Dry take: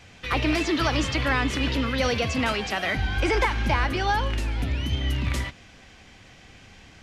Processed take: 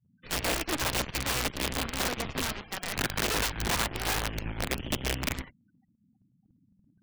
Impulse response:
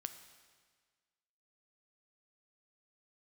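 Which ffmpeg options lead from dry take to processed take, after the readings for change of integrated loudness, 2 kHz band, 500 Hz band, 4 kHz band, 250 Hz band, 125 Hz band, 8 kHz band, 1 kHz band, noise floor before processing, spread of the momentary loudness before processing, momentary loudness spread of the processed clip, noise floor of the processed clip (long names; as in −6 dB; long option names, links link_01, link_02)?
−5.5 dB, −6.0 dB, −7.5 dB, −2.5 dB, −9.0 dB, −9.5 dB, +6.0 dB, −7.5 dB, −50 dBFS, 5 LU, 6 LU, −69 dBFS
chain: -filter_complex "[0:a]aeval=exprs='0.266*(cos(1*acos(clip(val(0)/0.266,-1,1)))-cos(1*PI/2))+0.0211*(cos(2*acos(clip(val(0)/0.266,-1,1)))-cos(2*PI/2))+0.00944*(cos(6*acos(clip(val(0)/0.266,-1,1)))-cos(6*PI/2))+0.0531*(cos(7*acos(clip(val(0)/0.266,-1,1)))-cos(7*PI/2))':channel_layout=same,bass=frequency=250:gain=7,treble=frequency=4000:gain=-9,asplit=2[link_01][link_02];[link_02]acompressor=threshold=-30dB:ratio=10,volume=0dB[link_03];[link_01][link_03]amix=inputs=2:normalize=0,aeval=exprs='(mod(4.22*val(0)+1,2)-1)/4.22':channel_layout=same,afftfilt=real='re*gte(hypot(re,im),0.0112)':imag='im*gte(hypot(re,im),0.0112)':win_size=1024:overlap=0.75,acrossover=split=150[link_04][link_05];[link_04]aeval=exprs='sgn(val(0))*max(abs(val(0))-0.00668,0)':channel_layout=same[link_06];[link_06][link_05]amix=inputs=2:normalize=0,volume=-8.5dB"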